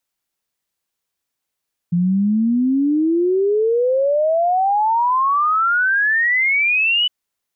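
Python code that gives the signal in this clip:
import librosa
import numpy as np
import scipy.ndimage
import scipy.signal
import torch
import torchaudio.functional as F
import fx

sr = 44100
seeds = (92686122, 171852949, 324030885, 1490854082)

y = fx.ess(sr, length_s=5.16, from_hz=170.0, to_hz=3000.0, level_db=-13.5)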